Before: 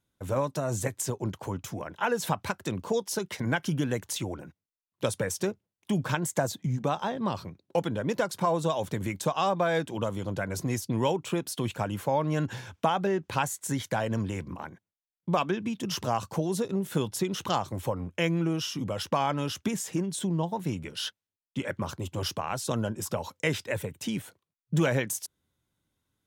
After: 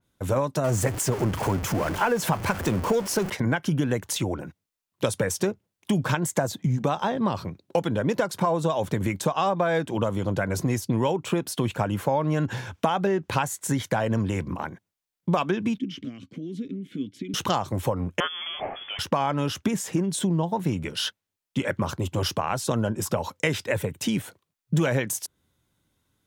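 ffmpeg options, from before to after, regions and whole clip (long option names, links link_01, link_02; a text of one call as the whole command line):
ffmpeg -i in.wav -filter_complex "[0:a]asettb=1/sr,asplit=3[link_01][link_02][link_03];[link_01]atrim=end=0.644[link_04];[link_02]atrim=start=0.64:end=3.3,asetpts=PTS-STARTPTS,afade=type=in:duration=0.004:curve=qsin,afade=type=out:start_time=2.656:duration=0.004:curve=qsin,aeval=exprs='val(0)+0.5*0.0251*sgn(val(0))':channel_layout=same,equalizer=frequency=3800:width=7.5:gain=-5.5[link_05];[link_03]atrim=start=3.296[link_06];[link_04][link_05]acrossfade=duration=0.004:curve1=hsin:curve2=qsin[link_07];[link_07][link_06]acrossfade=duration=0.004:curve1=qsin:curve2=hsin,asettb=1/sr,asplit=3[link_08][link_09][link_10];[link_08]atrim=end=15.784[link_11];[link_09]atrim=start=15.78:end=17.34,asetpts=PTS-STARTPTS,afade=type=in:duration=0.004:curve=qsin,afade=type=out:start_time=1.556:duration=0.004:curve=qsin,lowshelf=frequency=290:gain=9.5,acompressor=threshold=-23dB:ratio=4:attack=3.2:release=140:knee=1:detection=peak,asplit=3[link_12][link_13][link_14];[link_12]bandpass=frequency=270:width_type=q:width=8,volume=0dB[link_15];[link_13]bandpass=frequency=2290:width_type=q:width=8,volume=-6dB[link_16];[link_14]bandpass=frequency=3010:width_type=q:width=8,volume=-9dB[link_17];[link_15][link_16][link_17]amix=inputs=3:normalize=0[link_18];[link_10]atrim=start=17.336[link_19];[link_11][link_18]acrossfade=duration=0.004:curve1=hsin:curve2=qsin[link_20];[link_20][link_19]acrossfade=duration=0.004:curve1=qsin:curve2=hsin,asettb=1/sr,asplit=3[link_21][link_22][link_23];[link_21]atrim=end=18.204[link_24];[link_22]atrim=start=18.2:end=18.99,asetpts=PTS-STARTPTS,afade=type=in:duration=0.004:curve=qsin,afade=type=out:start_time=0.786:duration=0.004:curve=qsin,aeval=exprs='val(0)+0.5*0.0106*sgn(val(0))':channel_layout=same,highpass=frequency=1400:poles=1,lowpass=frequency=3100:width_type=q:width=0.5098,lowpass=frequency=3100:width_type=q:width=0.6013,lowpass=frequency=3100:width_type=q:width=0.9,lowpass=frequency=3100:width_type=q:width=2.563,afreqshift=-3600[link_25];[link_23]atrim=start=18.986[link_26];[link_24][link_25]acrossfade=duration=0.004:curve1=hsin:curve2=qsin[link_27];[link_27][link_26]acrossfade=duration=0.004:curve1=qsin:curve2=hsin,acompressor=threshold=-28dB:ratio=3,adynamicequalizer=threshold=0.00355:dfrequency=2600:dqfactor=0.7:tfrequency=2600:tqfactor=0.7:attack=5:release=100:ratio=0.375:range=2.5:mode=cutabove:tftype=highshelf,volume=7.5dB" out.wav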